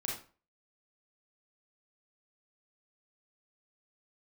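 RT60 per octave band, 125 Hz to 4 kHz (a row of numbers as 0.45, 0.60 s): 0.40, 0.40, 0.40, 0.40, 0.35, 0.30 s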